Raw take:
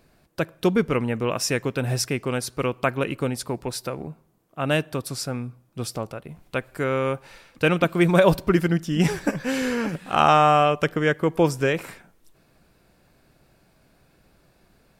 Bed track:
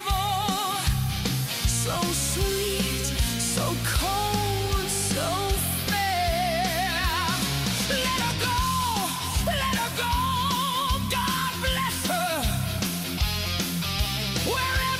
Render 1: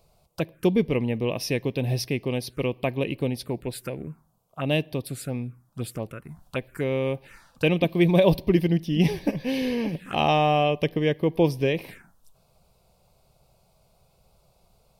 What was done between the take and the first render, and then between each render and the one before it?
phaser swept by the level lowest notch 280 Hz, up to 1,400 Hz, full sweep at −24.5 dBFS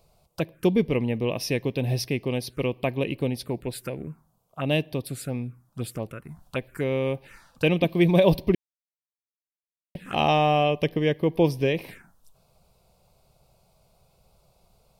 0:08.55–0:09.95: silence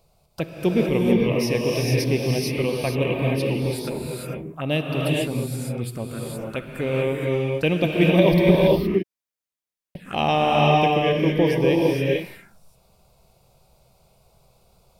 reverb whose tail is shaped and stops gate 490 ms rising, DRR −2.5 dB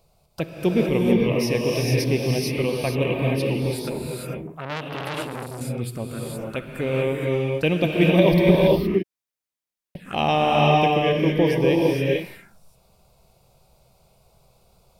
0:04.47–0:05.61: saturating transformer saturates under 2,400 Hz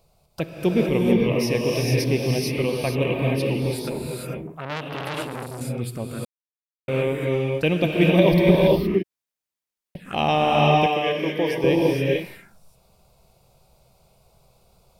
0:06.25–0:06.88: silence
0:10.86–0:11.64: high-pass filter 480 Hz 6 dB per octave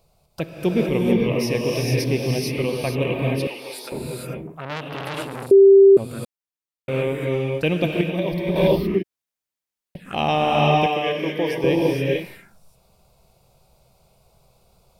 0:03.47–0:03.92: high-pass filter 730 Hz
0:05.51–0:05.97: beep over 392 Hz −6.5 dBFS
0:08.01–0:08.56: noise gate −5 dBFS, range −8 dB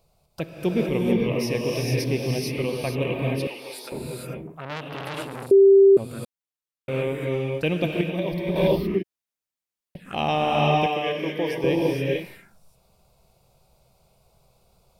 level −3 dB

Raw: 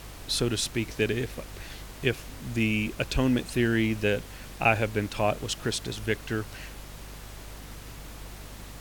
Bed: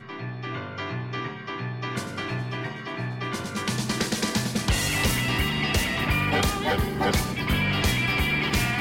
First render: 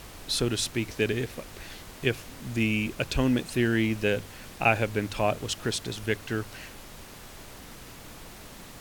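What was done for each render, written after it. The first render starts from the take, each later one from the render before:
hum removal 50 Hz, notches 3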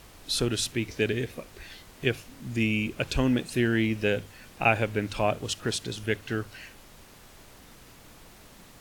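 noise reduction from a noise print 6 dB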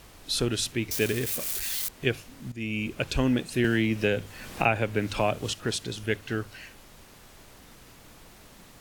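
0:00.91–0:01.89: spike at every zero crossing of −23 dBFS
0:02.52–0:02.92: fade in, from −15 dB
0:03.64–0:05.53: multiband upward and downward compressor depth 70%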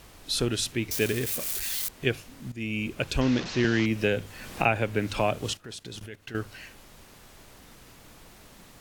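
0:03.21–0:03.86: linear delta modulator 32 kbit/s, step −29 dBFS
0:05.57–0:06.35: output level in coarse steps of 20 dB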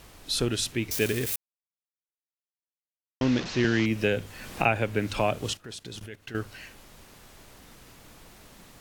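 0:01.36–0:03.21: silence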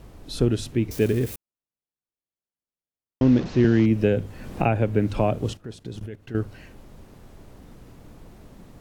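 tilt shelving filter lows +8.5 dB, about 900 Hz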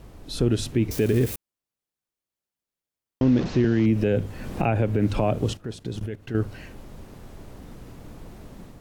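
automatic gain control gain up to 4 dB
brickwall limiter −12 dBFS, peak gain reduction 8 dB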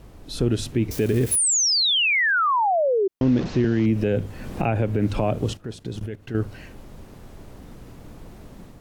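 0:01.31–0:03.08: sound drawn into the spectrogram fall 370–11,000 Hz −20 dBFS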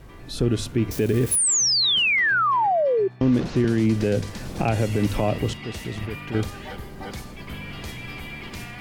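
mix in bed −12.5 dB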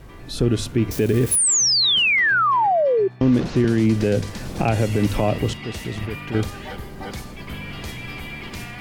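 level +2.5 dB

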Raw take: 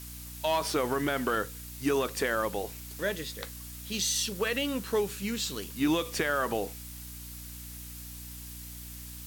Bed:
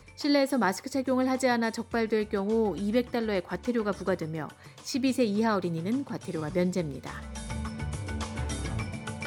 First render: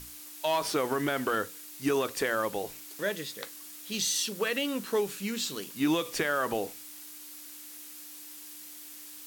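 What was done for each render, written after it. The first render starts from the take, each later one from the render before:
mains-hum notches 60/120/180/240 Hz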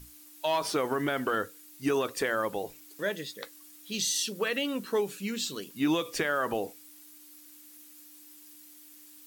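broadband denoise 9 dB, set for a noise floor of −46 dBFS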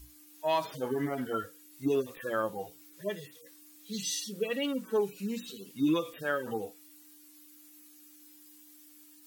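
harmonic-percussive split with one part muted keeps harmonic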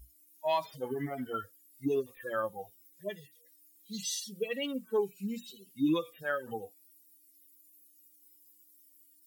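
spectral dynamics exaggerated over time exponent 1.5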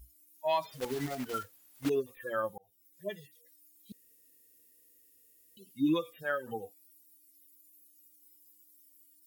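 0:00.71–0:01.91: one scale factor per block 3 bits
0:02.58–0:03.05: fade in
0:03.92–0:05.57: fill with room tone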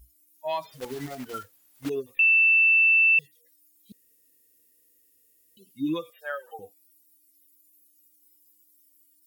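0:02.19–0:03.19: beep over 2,660 Hz −15.5 dBFS
0:06.10–0:06.59: Butterworth high-pass 500 Hz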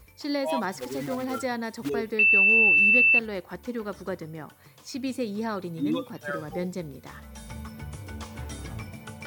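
mix in bed −4.5 dB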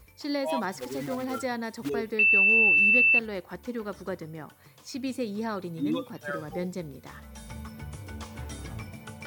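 level −1.5 dB

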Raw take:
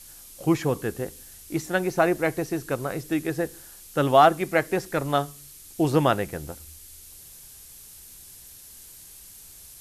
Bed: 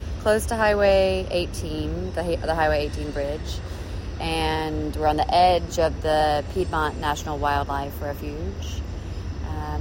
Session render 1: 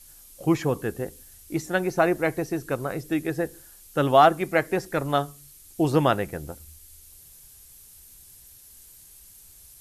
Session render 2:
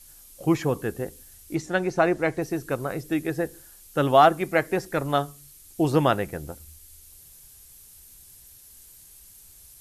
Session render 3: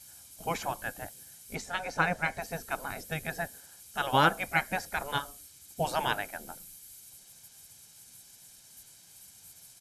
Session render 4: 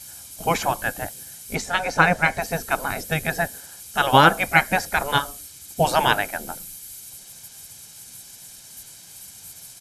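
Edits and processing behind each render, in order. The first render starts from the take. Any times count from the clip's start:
broadband denoise 6 dB, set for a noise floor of −47 dBFS
0:01.55–0:02.42: low-pass filter 7,600 Hz
gate on every frequency bin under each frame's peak −10 dB weak; comb filter 1.3 ms, depth 42%
level +11 dB; brickwall limiter −2 dBFS, peak gain reduction 2.5 dB

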